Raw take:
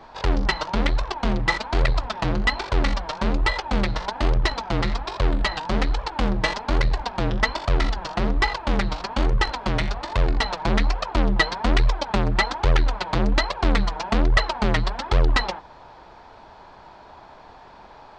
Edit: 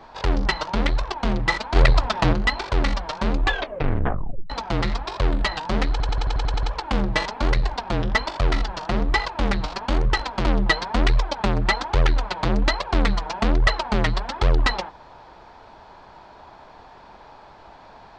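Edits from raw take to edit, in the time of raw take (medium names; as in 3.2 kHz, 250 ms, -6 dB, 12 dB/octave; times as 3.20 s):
1.76–2.33 s: gain +5 dB
3.34 s: tape stop 1.16 s
5.91 s: stutter 0.09 s, 9 plays
9.73–11.15 s: delete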